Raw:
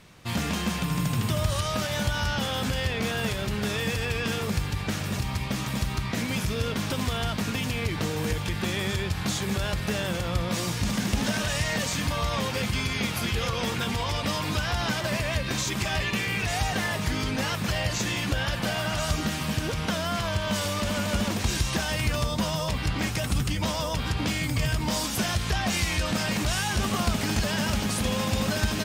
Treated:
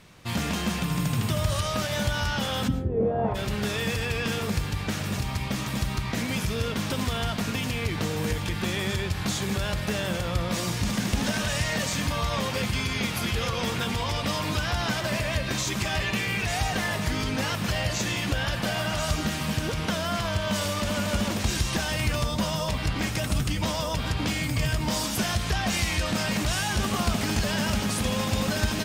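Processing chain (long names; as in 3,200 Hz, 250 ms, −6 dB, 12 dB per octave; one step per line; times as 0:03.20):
0:02.67–0:03.34: low-pass with resonance 220 Hz → 950 Hz, resonance Q 3.9
convolution reverb RT60 0.55 s, pre-delay 65 ms, DRR 13 dB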